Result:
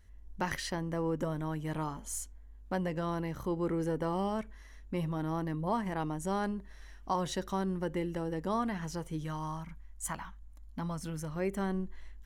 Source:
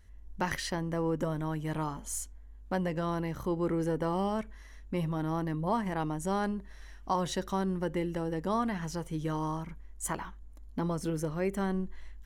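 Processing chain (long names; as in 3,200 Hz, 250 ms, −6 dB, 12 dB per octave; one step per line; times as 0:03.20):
0:09.24–0:11.36: parametric band 400 Hz −15 dB 0.74 octaves
level −2 dB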